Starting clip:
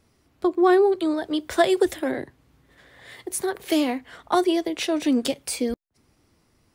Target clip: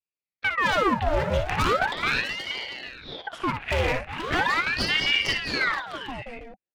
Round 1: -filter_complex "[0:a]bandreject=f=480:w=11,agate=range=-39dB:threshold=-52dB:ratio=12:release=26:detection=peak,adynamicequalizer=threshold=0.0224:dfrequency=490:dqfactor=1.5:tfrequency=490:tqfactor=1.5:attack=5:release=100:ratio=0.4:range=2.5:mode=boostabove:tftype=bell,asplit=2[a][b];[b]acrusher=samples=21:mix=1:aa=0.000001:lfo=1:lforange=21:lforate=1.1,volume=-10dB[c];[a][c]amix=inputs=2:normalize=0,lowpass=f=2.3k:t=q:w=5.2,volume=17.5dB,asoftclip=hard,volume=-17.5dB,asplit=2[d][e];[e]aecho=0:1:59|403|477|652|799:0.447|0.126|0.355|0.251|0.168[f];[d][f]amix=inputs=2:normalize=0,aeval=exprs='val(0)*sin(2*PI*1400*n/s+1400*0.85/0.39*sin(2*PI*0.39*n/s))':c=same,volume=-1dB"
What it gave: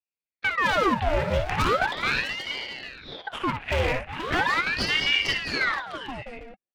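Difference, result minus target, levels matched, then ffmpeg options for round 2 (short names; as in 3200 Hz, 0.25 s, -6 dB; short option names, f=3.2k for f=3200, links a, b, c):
decimation with a swept rate: distortion +10 dB
-filter_complex "[0:a]bandreject=f=480:w=11,agate=range=-39dB:threshold=-52dB:ratio=12:release=26:detection=peak,adynamicequalizer=threshold=0.0224:dfrequency=490:dqfactor=1.5:tfrequency=490:tqfactor=1.5:attack=5:release=100:ratio=0.4:range=2.5:mode=boostabove:tftype=bell,asplit=2[a][b];[b]acrusher=samples=5:mix=1:aa=0.000001:lfo=1:lforange=5:lforate=1.1,volume=-10dB[c];[a][c]amix=inputs=2:normalize=0,lowpass=f=2.3k:t=q:w=5.2,volume=17.5dB,asoftclip=hard,volume=-17.5dB,asplit=2[d][e];[e]aecho=0:1:59|403|477|652|799:0.447|0.126|0.355|0.251|0.168[f];[d][f]amix=inputs=2:normalize=0,aeval=exprs='val(0)*sin(2*PI*1400*n/s+1400*0.85/0.39*sin(2*PI*0.39*n/s))':c=same,volume=-1dB"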